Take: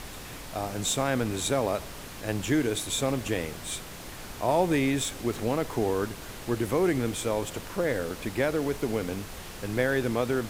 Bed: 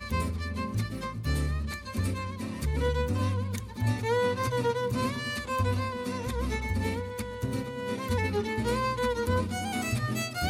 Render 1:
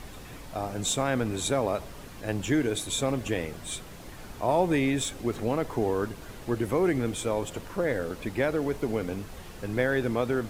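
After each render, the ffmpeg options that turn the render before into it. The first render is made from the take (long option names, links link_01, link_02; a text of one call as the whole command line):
ffmpeg -i in.wav -af "afftdn=noise_reduction=7:noise_floor=-42" out.wav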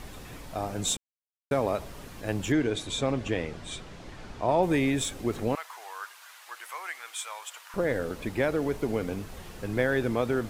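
ffmpeg -i in.wav -filter_complex "[0:a]asettb=1/sr,asplit=3[link_01][link_02][link_03];[link_01]atrim=end=2.524[link_04];[link_02]atrim=start=2.52:end=4.63,asetpts=PTS-STARTPTS,afade=type=in:duration=0.004:curve=qsin,afade=type=out:start_time=2.106:duration=0.004:curve=qsin,lowpass=5700[link_05];[link_03]atrim=start=4.626[link_06];[link_04][link_05]acrossfade=duration=0.004:curve1=hsin:curve2=qsin[link_07];[link_07][link_06]acrossfade=duration=0.004:curve1=qsin:curve2=hsin,asettb=1/sr,asplit=3[link_08][link_09][link_10];[link_08]atrim=end=5.554[link_11];[link_09]atrim=start=5.55:end=7.74,asetpts=PTS-STARTPTS,afade=type=in:duration=0.004:curve=qsin,afade=type=out:start_time=2.186:duration=0.004:curve=qsin,highpass=frequency=1000:width=0.5412,highpass=frequency=1000:width=1.3066[link_12];[link_10]atrim=start=7.736[link_13];[link_11][link_12]acrossfade=duration=0.004:curve1=hsin:curve2=qsin[link_14];[link_14][link_13]acrossfade=duration=0.004:curve1=qsin:curve2=hsin,asplit=3[link_15][link_16][link_17];[link_15]atrim=end=0.97,asetpts=PTS-STARTPTS,afade=type=out:start_time=0.966:duration=0.004:curve=hsin[link_18];[link_16]atrim=start=0.97:end=1.51,asetpts=PTS-STARTPTS,volume=0[link_19];[link_17]atrim=start=1.51,asetpts=PTS-STARTPTS,afade=type=in:duration=0.004:curve=hsin[link_20];[link_18][link_19][link_20]concat=n=3:v=0:a=1" out.wav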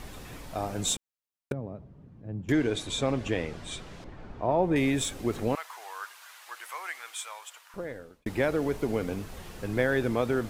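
ffmpeg -i in.wav -filter_complex "[0:a]asettb=1/sr,asplit=3[link_01][link_02][link_03];[link_01]atrim=end=1.524[link_04];[link_02]atrim=start=1.52:end=2.49,asetpts=PTS-STARTPTS,afade=type=in:duration=0.004:curve=qsin,afade=type=out:start_time=0.966:duration=0.004:curve=qsin,bandpass=frequency=140:width_type=q:width=1.5[link_05];[link_03]atrim=start=2.486[link_06];[link_04][link_05]acrossfade=duration=0.004:curve1=hsin:curve2=qsin[link_07];[link_07][link_06]acrossfade=duration=0.004:curve1=qsin:curve2=hsin,asettb=1/sr,asplit=3[link_08][link_09][link_10];[link_08]atrim=end=4.044[link_11];[link_09]atrim=start=4.04:end=4.76,asetpts=PTS-STARTPTS,afade=type=in:duration=0.004:curve=qsin,afade=type=out:start_time=0.716:duration=0.004:curve=qsin,lowpass=frequency=1100:poles=1[link_12];[link_10]atrim=start=4.756[link_13];[link_11][link_12]acrossfade=duration=0.004:curve1=hsin:curve2=qsin[link_14];[link_14][link_13]acrossfade=duration=0.004:curve1=qsin:curve2=hsin,asplit=2[link_15][link_16];[link_15]atrim=end=8.26,asetpts=PTS-STARTPTS,afade=type=out:start_time=6.99:duration=1.27[link_17];[link_16]atrim=start=8.26,asetpts=PTS-STARTPTS,afade=type=in:duration=0.004:curve=hsin[link_18];[link_17][link_18]concat=n=2:v=0:a=1" out.wav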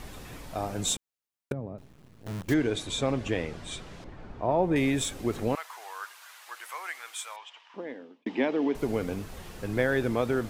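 ffmpeg -i in.wav -filter_complex "[0:a]asettb=1/sr,asplit=3[link_01][link_02][link_03];[link_01]atrim=end=1.784[link_04];[link_02]atrim=start=1.78:end=2.54,asetpts=PTS-STARTPTS,afade=type=in:duration=0.004:curve=qsin,afade=type=out:start_time=0.756:duration=0.004:curve=qsin,acrusher=bits=7:dc=4:mix=0:aa=0.000001[link_05];[link_03]atrim=start=2.536[link_06];[link_04][link_05]acrossfade=duration=0.004:curve1=hsin:curve2=qsin[link_07];[link_07][link_06]acrossfade=duration=0.004:curve1=qsin:curve2=hsin,asettb=1/sr,asplit=3[link_08][link_09][link_10];[link_08]atrim=end=7.364[link_11];[link_09]atrim=start=7.36:end=8.75,asetpts=PTS-STARTPTS,afade=type=in:duration=0.004:curve=qsin,afade=type=out:start_time=1.386:duration=0.004:curve=qsin,highpass=frequency=220:width=0.5412,highpass=frequency=220:width=1.3066,equalizer=frequency=260:width_type=q:width=4:gain=8,equalizer=frequency=550:width_type=q:width=4:gain=-4,equalizer=frequency=910:width_type=q:width=4:gain=4,equalizer=frequency=1400:width_type=q:width=4:gain=-9,equalizer=frequency=3000:width_type=q:width=4:gain=5,equalizer=frequency=4300:width_type=q:width=4:gain=-5,lowpass=frequency=4800:width=0.5412,lowpass=frequency=4800:width=1.3066[link_12];[link_10]atrim=start=8.746[link_13];[link_11][link_12]acrossfade=duration=0.004:curve1=hsin:curve2=qsin[link_14];[link_14][link_13]acrossfade=duration=0.004:curve1=qsin:curve2=hsin" out.wav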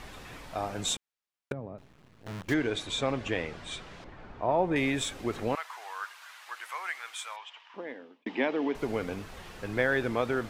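ffmpeg -i in.wav -af "lowpass=frequency=2700:poles=1,tiltshelf=frequency=710:gain=-5" out.wav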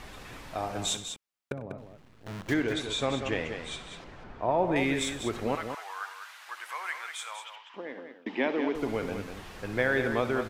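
ffmpeg -i in.wav -af "aecho=1:1:62|96|195:0.178|0.126|0.398" out.wav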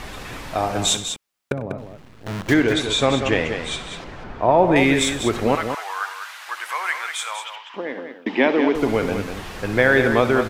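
ffmpeg -i in.wav -af "volume=11dB,alimiter=limit=-3dB:level=0:latency=1" out.wav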